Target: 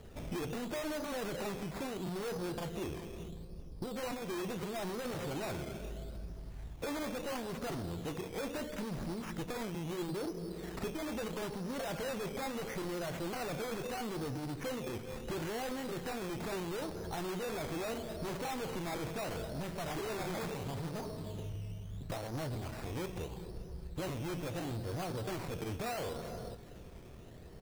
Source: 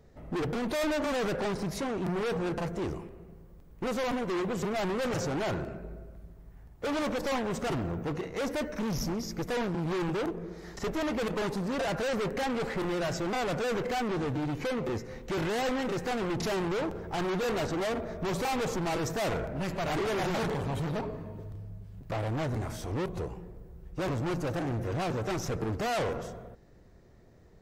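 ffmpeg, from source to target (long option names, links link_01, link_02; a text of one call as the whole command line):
ffmpeg -i in.wav -filter_complex "[0:a]asettb=1/sr,asplit=3[link_01][link_02][link_03];[link_01]atrim=end=9.894[link_04];[link_02]atrim=start=9.89:end=11.01,asetpts=PTS-STARTPTS,afade=type=in:duration=0.004:curve=qsin,afade=type=out:start_time=1.116:duration=0.004:curve=qsin,equalizer=frequency=240:width=0.44:gain=5[link_05];[link_03]atrim=start=11.006[link_06];[link_04][link_05]acrossfade=duration=0.004:curve1=hsin:curve2=qsin[link_07];[link_07][link_06]acrossfade=duration=0.004:curve1=qsin:curve2=hsin,acompressor=threshold=-45dB:ratio=5,flanger=delay=9.9:depth=5.8:regen=-71:speed=0.24:shape=triangular,asettb=1/sr,asplit=3[link_08][link_09][link_10];[link_08]atrim=end=3.284[link_11];[link_09]atrim=start=3.28:end=3.96,asetpts=PTS-STARTPTS,afade=type=in:duration=0.004:curve=qsin,afade=type=out:start_time=0.676:duration=0.004:curve=qsin,adynamicsmooth=sensitivity=4:basefreq=890[link_12];[link_10]atrim=start=3.956[link_13];[link_11][link_12]acrossfade=duration=0.004:curve1=hsin:curve2=qsin[link_14];[link_14][link_13]acrossfade=duration=0.004:curve1=qsin:curve2=hsin,acrusher=samples=12:mix=1:aa=0.000001:lfo=1:lforange=7.2:lforate=0.75,aecho=1:1:395|790|1185:0.126|0.0403|0.0129,volume=10dB" out.wav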